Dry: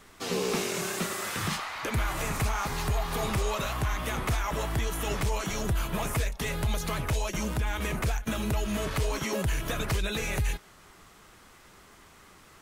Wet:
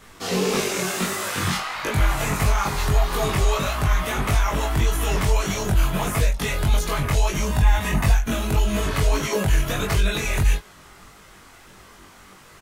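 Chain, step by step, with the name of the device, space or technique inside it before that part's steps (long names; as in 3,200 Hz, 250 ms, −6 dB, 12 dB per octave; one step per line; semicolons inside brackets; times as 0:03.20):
0:07.47–0:08.13: comb filter 1.1 ms, depth 52%
double-tracked vocal (double-tracking delay 21 ms −3.5 dB; chorus effect 1.6 Hz, delay 19 ms, depth 3.5 ms)
level +8 dB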